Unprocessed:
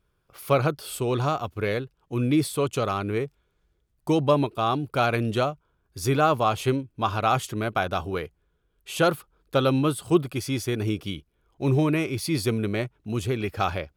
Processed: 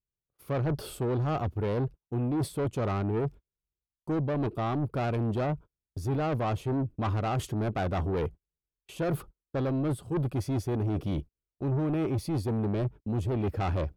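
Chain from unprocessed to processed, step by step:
noise gate −43 dBFS, range −38 dB
tilt shelving filter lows +9 dB, about 830 Hz
reversed playback
downward compressor 10 to 1, threshold −27 dBFS, peak gain reduction 19 dB
reversed playback
soft clipping −31 dBFS, distortion −11 dB
level +6 dB

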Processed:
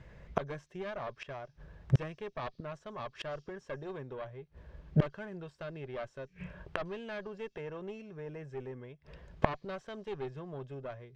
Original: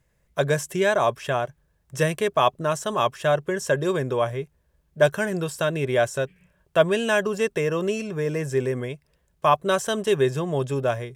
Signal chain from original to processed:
harmonic generator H 4 −6 dB, 5 −8 dB, 7 −41 dB, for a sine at −4.5 dBFS
gate with flip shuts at −19 dBFS, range −32 dB
high-frequency loss of the air 220 metres
on a send: flat-topped band-pass 5,600 Hz, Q 2.2 + convolution reverb RT60 1.0 s, pre-delay 98 ms, DRR 39 dB
on the sum: level +6 dB

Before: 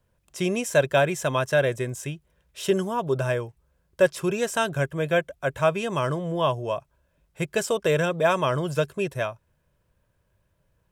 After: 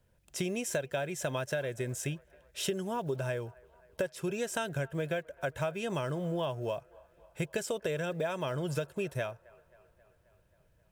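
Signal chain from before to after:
one scale factor per block 7 bits
parametric band 1,100 Hz −8.5 dB 0.25 octaves
downward compressor 10 to 1, threshold −30 dBFS, peak gain reduction 17 dB
delay with a band-pass on its return 267 ms, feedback 65%, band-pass 1,000 Hz, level −22.5 dB

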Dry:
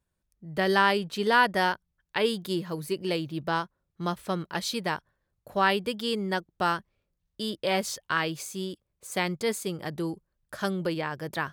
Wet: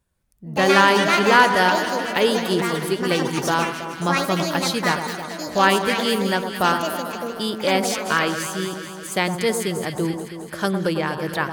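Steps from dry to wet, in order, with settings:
on a send: delay that swaps between a low-pass and a high-pass 108 ms, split 1,300 Hz, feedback 80%, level −7 dB
on the sum: delay with pitch and tempo change per echo 157 ms, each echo +6 semitones, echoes 2, each echo −6 dB
parametric band 10,000 Hz +2.5 dB 0.34 octaves
level +6.5 dB

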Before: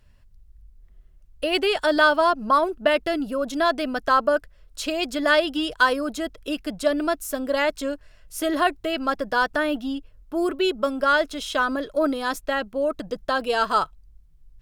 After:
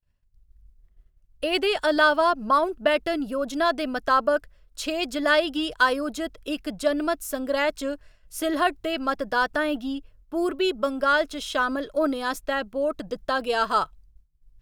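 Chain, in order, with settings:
downward expander −43 dBFS
level −1.5 dB

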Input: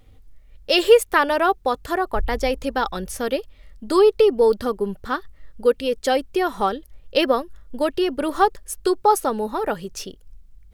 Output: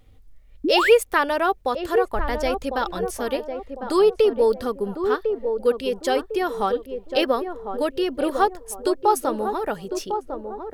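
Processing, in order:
feedback echo with a band-pass in the loop 1,052 ms, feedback 42%, band-pass 460 Hz, level −6 dB
sound drawn into the spectrogram rise, 0:00.64–0:00.91, 260–2,700 Hz −18 dBFS
level −2.5 dB

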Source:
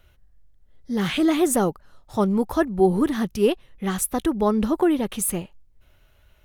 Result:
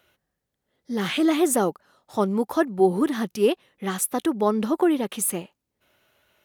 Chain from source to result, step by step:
high-pass filter 220 Hz 12 dB per octave

